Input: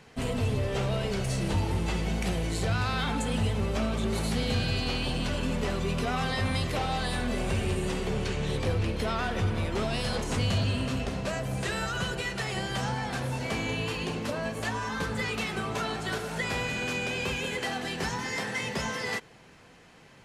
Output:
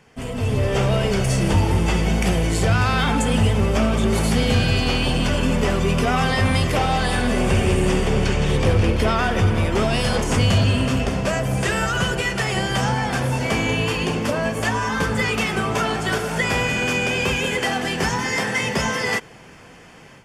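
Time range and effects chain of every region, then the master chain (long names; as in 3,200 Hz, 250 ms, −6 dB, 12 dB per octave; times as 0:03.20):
0:06.92–0:09.11: single-tap delay 162 ms −8.5 dB + highs frequency-modulated by the lows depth 0.1 ms
whole clip: notch filter 4,000 Hz, Q 5.6; automatic gain control gain up to 10 dB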